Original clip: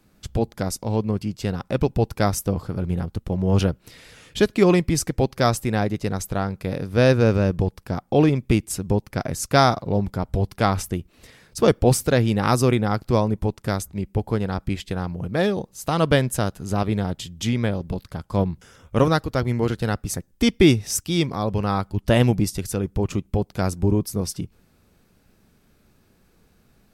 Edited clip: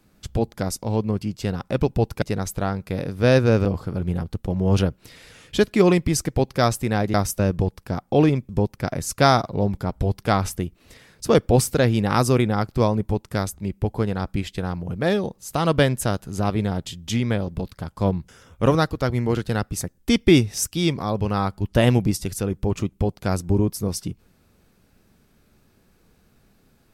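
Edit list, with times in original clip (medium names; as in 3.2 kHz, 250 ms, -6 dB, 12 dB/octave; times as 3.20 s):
2.22–2.47 s: swap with 5.96–7.39 s
8.49–8.82 s: delete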